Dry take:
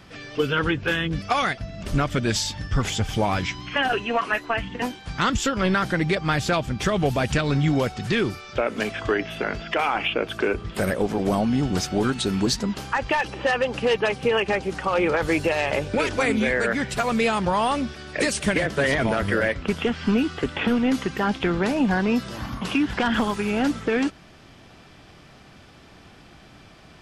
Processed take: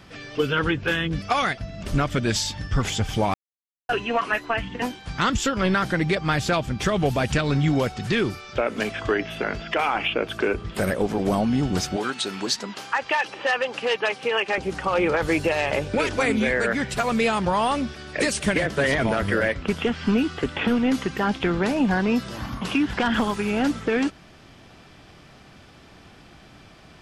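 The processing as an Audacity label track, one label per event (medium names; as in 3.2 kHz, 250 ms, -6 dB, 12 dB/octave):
3.340000	3.890000	mute
11.960000	14.580000	frequency weighting A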